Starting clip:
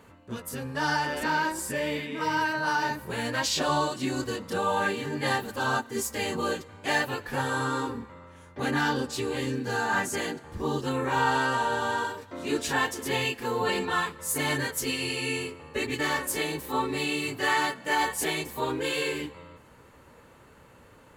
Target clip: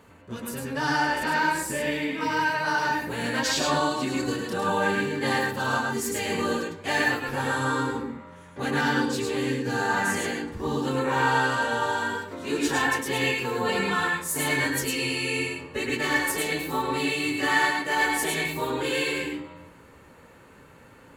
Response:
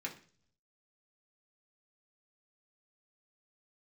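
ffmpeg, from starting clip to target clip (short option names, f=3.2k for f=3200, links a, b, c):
-filter_complex "[0:a]asplit=2[a][b];[1:a]atrim=start_sample=2205,adelay=104[c];[b][c]afir=irnorm=-1:irlink=0,volume=0dB[d];[a][d]amix=inputs=2:normalize=0"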